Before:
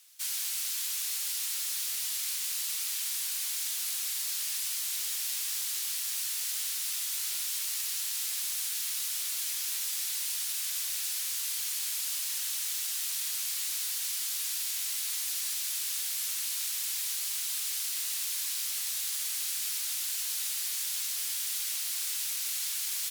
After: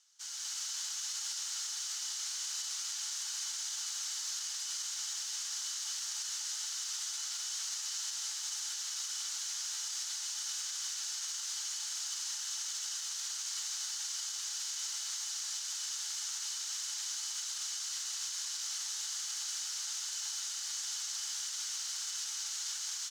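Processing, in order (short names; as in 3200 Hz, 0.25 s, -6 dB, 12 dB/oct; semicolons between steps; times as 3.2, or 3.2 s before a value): small resonant body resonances 860/3000 Hz, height 12 dB, ringing for 55 ms; AGC gain up to 8 dB; EQ curve 290 Hz 0 dB, 500 Hz -15 dB, 1400 Hz +1 dB, 2400 Hz -11 dB, 6500 Hz +2 dB, 10000 Hz -18 dB, 16000 Hz -29 dB; limiter -24 dBFS, peak gain reduction 6 dB; gain -5 dB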